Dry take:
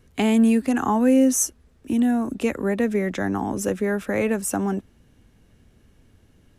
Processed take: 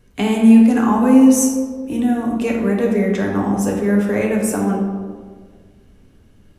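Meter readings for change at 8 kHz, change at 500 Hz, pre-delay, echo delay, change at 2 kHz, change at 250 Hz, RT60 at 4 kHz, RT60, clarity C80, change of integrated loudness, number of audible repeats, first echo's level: +2.0 dB, +4.5 dB, 3 ms, no echo, +3.0 dB, +7.5 dB, 0.85 s, 1.7 s, 4.5 dB, +6.0 dB, no echo, no echo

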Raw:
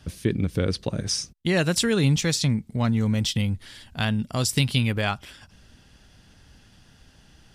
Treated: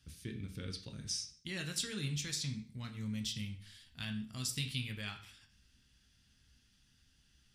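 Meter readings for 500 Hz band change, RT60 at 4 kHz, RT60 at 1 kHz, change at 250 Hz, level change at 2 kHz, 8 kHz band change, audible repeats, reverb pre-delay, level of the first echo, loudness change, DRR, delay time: -24.5 dB, 0.45 s, 0.50 s, -18.0 dB, -15.5 dB, -11.5 dB, no echo, 5 ms, no echo, -15.5 dB, 3.5 dB, no echo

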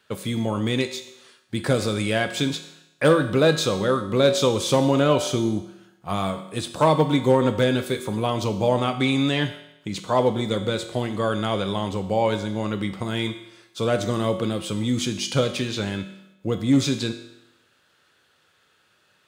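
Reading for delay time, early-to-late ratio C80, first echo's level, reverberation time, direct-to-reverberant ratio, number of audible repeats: no echo, 12.5 dB, no echo, 0.85 s, 7.5 dB, no echo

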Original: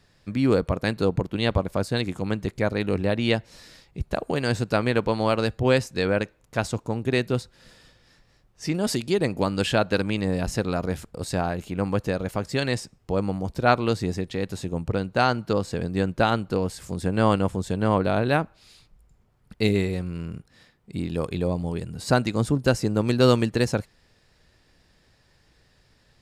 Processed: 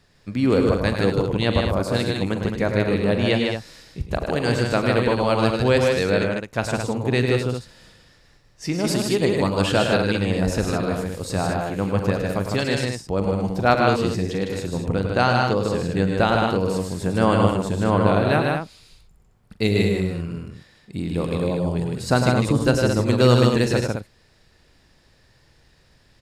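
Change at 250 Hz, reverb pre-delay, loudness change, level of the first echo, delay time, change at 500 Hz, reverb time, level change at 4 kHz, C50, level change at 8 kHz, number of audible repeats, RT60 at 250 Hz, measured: +3.5 dB, no reverb, +3.5 dB, -13.5 dB, 41 ms, +4.0 dB, no reverb, +3.5 dB, no reverb, +4.0 dB, 4, no reverb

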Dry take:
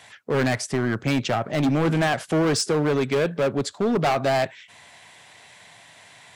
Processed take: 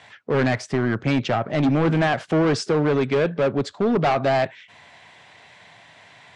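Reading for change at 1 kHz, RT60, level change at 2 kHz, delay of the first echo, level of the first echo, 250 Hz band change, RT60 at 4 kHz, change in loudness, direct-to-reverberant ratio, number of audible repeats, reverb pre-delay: +1.5 dB, no reverb, +1.0 dB, no echo, no echo, +2.0 dB, no reverb, +1.5 dB, no reverb, no echo, no reverb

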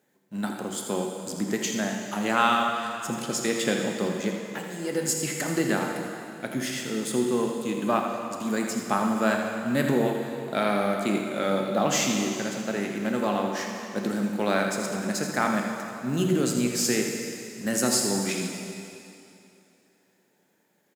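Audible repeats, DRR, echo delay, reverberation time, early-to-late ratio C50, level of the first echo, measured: 1, 1.0 dB, 82 ms, 2.7 s, 2.0 dB, -9.0 dB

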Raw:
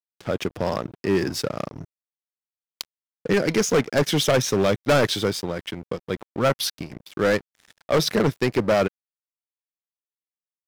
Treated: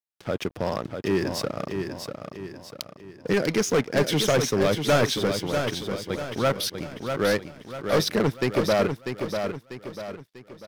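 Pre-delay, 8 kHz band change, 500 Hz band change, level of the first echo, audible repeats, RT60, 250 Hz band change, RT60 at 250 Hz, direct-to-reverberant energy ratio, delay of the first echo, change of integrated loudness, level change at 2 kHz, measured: no reverb, -2.0 dB, -1.5 dB, -6.5 dB, 4, no reverb, -1.5 dB, no reverb, no reverb, 644 ms, -2.5 dB, -1.5 dB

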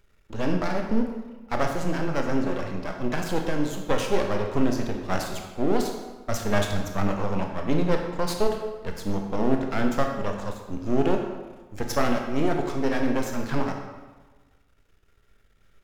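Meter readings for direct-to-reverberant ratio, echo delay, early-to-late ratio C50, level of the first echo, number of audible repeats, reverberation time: 2.5 dB, no echo, 4.5 dB, no echo, no echo, 1.3 s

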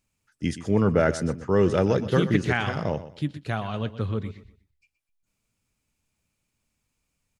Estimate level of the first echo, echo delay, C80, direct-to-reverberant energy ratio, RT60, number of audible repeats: -14.0 dB, 123 ms, no reverb, no reverb, no reverb, 2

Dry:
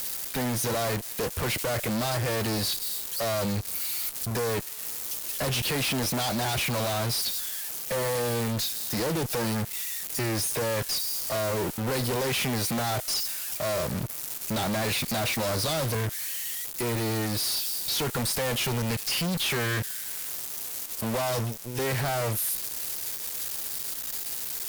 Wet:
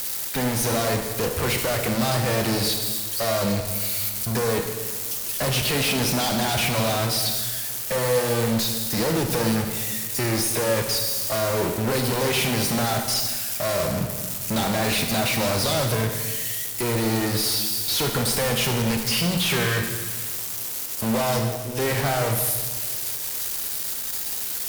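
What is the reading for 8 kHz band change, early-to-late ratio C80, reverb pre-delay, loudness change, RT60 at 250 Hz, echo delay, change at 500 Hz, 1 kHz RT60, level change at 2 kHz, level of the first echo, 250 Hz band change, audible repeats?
+5.0 dB, 7.0 dB, 26 ms, +5.0 dB, 1.8 s, no echo, +5.5 dB, 1.3 s, +5.0 dB, no echo, +6.0 dB, no echo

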